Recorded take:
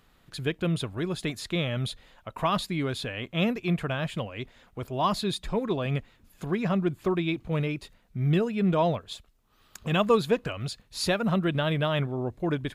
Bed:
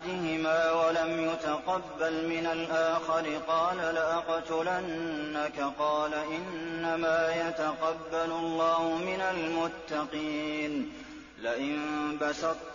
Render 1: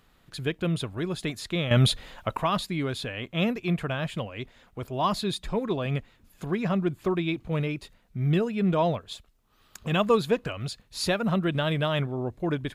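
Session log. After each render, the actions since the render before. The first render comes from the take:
0:01.71–0:02.37: clip gain +10.5 dB
0:11.52–0:12.02: parametric band 7,400 Hz +4.5 dB 1.3 octaves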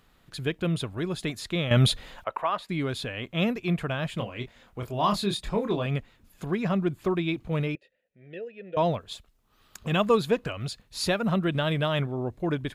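0:02.24–0:02.69: three-way crossover with the lows and the highs turned down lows −20 dB, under 410 Hz, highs −14 dB, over 2,500 Hz
0:04.17–0:05.86: double-tracking delay 25 ms −5.5 dB
0:07.75–0:08.77: formant filter e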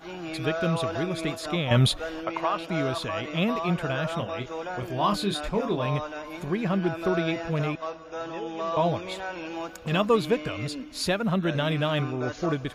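mix in bed −4 dB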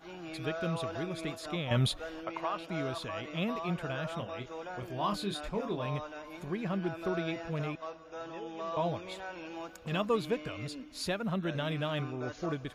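level −8 dB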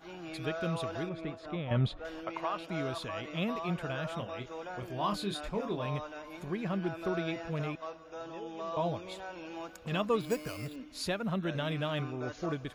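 0:01.09–0:02.05: head-to-tape spacing loss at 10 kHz 26 dB
0:08.00–0:09.48: dynamic equaliser 1,900 Hz, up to −4 dB, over −55 dBFS, Q 1.4
0:10.21–0:10.76: bad sample-rate conversion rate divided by 6×, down filtered, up hold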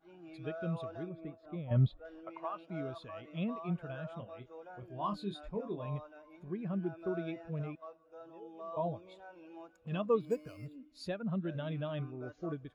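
every bin expanded away from the loudest bin 1.5 to 1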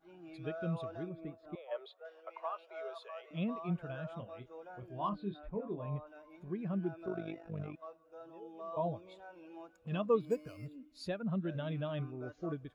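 0:01.55–0:03.31: Butterworth high-pass 400 Hz 72 dB per octave
0:05.09–0:06.07: high-frequency loss of the air 400 metres
0:07.06–0:07.74: amplitude modulation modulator 50 Hz, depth 60%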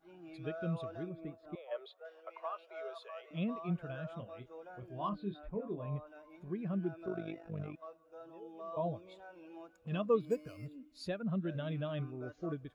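dynamic equaliser 880 Hz, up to −5 dB, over −59 dBFS, Q 4.2

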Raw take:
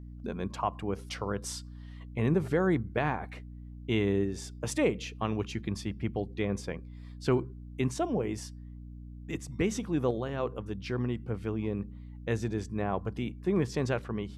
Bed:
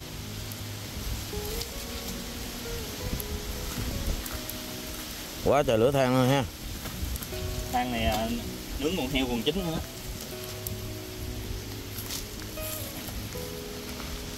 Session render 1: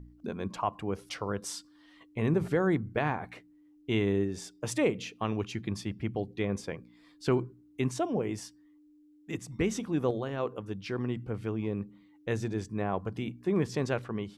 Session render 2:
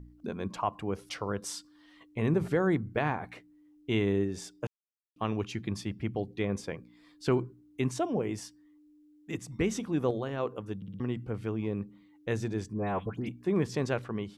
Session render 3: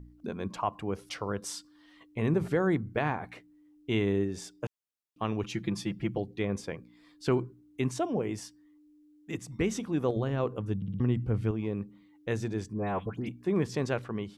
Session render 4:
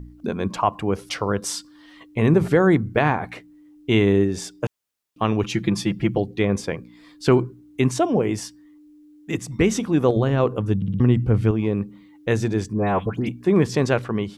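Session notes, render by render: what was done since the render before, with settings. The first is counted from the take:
hum removal 60 Hz, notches 4
0:04.67–0:05.16: silence; 0:10.76: stutter in place 0.06 s, 4 plays; 0:12.73–0:13.29: all-pass dispersion highs, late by 105 ms, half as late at 1,900 Hz
0:05.43–0:06.18: comb filter 5.9 ms, depth 83%; 0:10.16–0:11.51: low-shelf EQ 190 Hz +12 dB
level +10.5 dB

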